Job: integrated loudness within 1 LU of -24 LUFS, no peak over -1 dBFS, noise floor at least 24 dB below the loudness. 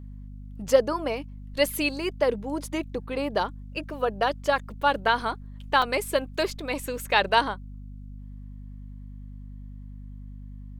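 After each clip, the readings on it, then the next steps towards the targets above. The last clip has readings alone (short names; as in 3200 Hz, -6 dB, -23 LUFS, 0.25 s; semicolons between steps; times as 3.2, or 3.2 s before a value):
dropouts 1; longest dropout 3.8 ms; hum 50 Hz; harmonics up to 250 Hz; hum level -38 dBFS; loudness -26.5 LUFS; peak -5.0 dBFS; loudness target -24.0 LUFS
-> interpolate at 5.82, 3.8 ms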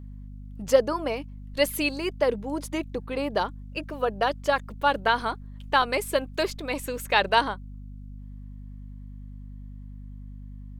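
dropouts 0; hum 50 Hz; harmonics up to 250 Hz; hum level -38 dBFS
-> de-hum 50 Hz, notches 5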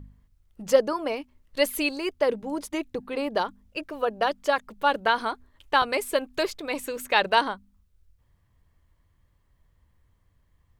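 hum none; loudness -26.5 LUFS; peak -5.5 dBFS; loudness target -24.0 LUFS
-> gain +2.5 dB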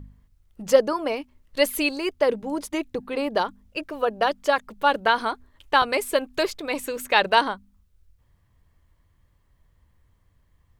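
loudness -24.0 LUFS; peak -3.0 dBFS; noise floor -64 dBFS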